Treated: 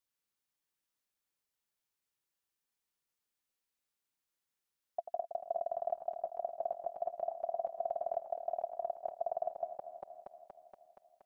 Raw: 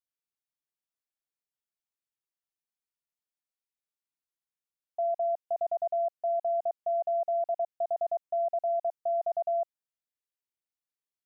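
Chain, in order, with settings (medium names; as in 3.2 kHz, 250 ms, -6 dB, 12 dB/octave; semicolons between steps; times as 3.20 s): backward echo that repeats 118 ms, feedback 81%, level -11.5 dB; band-stop 680 Hz, Q 12; trim +4.5 dB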